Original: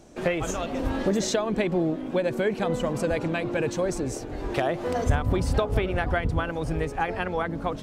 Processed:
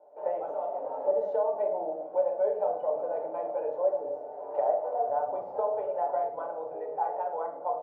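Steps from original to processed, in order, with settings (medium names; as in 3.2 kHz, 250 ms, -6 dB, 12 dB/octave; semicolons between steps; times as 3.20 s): Butterworth band-pass 700 Hz, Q 2.4; comb 6.8 ms, depth 53%; reverberation RT60 0.75 s, pre-delay 17 ms, DRR 3 dB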